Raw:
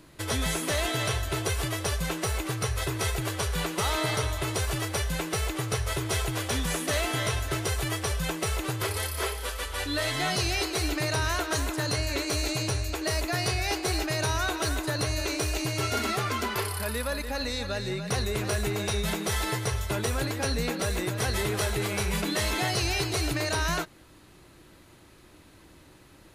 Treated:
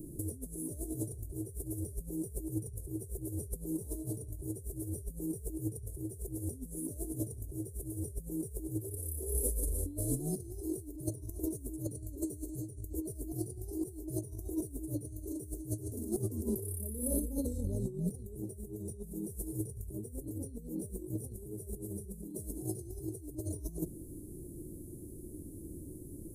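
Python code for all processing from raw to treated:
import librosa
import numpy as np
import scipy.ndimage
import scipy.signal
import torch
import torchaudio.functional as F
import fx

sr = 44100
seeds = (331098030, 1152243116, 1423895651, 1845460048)

y = fx.chain(x, sr, fx.hum_notches(base_hz=50, count=5),
    fx.doubler(ms=37.0, db=-3.5), at=(16.94, 17.58))
y = scipy.signal.sosfilt(scipy.signal.cheby1(3, 1.0, [370.0, 9400.0], 'bandstop', fs=sr, output='sos'), y)
y = fx.hum_notches(y, sr, base_hz=60, count=3)
y = fx.over_compress(y, sr, threshold_db=-39.0, ratio=-0.5)
y = y * 10.0 ** (2.0 / 20.0)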